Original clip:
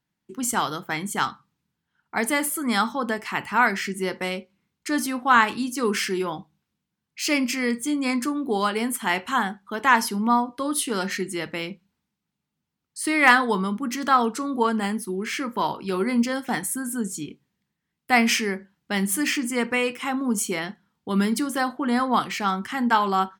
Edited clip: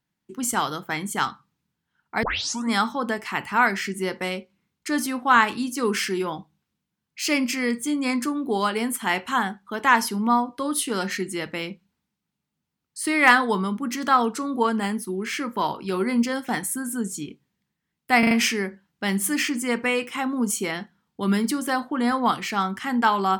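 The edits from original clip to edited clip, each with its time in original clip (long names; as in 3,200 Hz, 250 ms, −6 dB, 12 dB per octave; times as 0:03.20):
0:02.23: tape start 0.47 s
0:18.19: stutter 0.04 s, 4 plays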